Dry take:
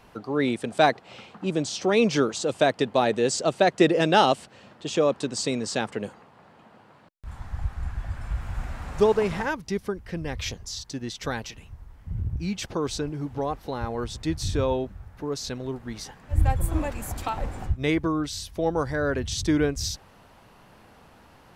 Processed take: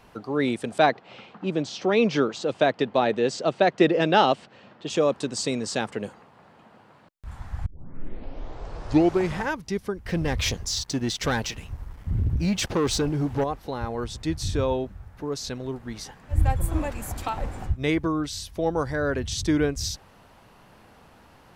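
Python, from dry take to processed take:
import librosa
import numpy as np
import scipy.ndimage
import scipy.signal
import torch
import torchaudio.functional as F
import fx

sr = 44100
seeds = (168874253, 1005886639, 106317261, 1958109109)

y = fx.bandpass_edges(x, sr, low_hz=110.0, high_hz=4300.0, at=(0.78, 4.9))
y = fx.leveller(y, sr, passes=2, at=(10.05, 13.44))
y = fx.edit(y, sr, fx.tape_start(start_s=7.66, length_s=1.77), tone=tone)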